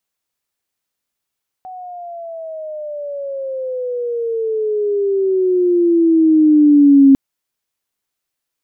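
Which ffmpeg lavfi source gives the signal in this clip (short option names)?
-f lavfi -i "aevalsrc='pow(10,(-29+25*t/5.5)/20)*sin(2*PI*750*5.5/log(270/750)*(exp(log(270/750)*t/5.5)-1))':d=5.5:s=44100"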